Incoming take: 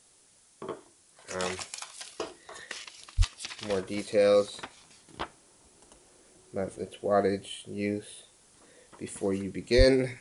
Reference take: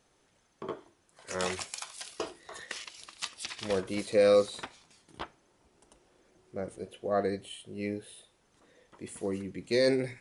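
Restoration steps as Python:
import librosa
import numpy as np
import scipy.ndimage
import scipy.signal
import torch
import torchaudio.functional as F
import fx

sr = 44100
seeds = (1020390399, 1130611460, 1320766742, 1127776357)

y = fx.fix_deplosive(x, sr, at_s=(3.17, 9.77))
y = fx.noise_reduce(y, sr, print_start_s=0.08, print_end_s=0.58, reduce_db=8.0)
y = fx.fix_level(y, sr, at_s=4.77, step_db=-4.0)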